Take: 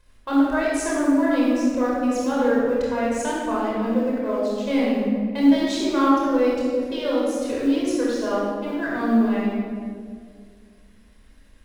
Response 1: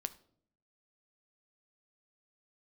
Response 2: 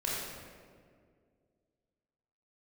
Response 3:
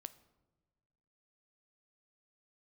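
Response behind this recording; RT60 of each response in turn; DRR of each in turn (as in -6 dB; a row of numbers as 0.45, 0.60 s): 2; 0.60 s, 2.0 s, not exponential; 11.0, -6.0, 13.0 dB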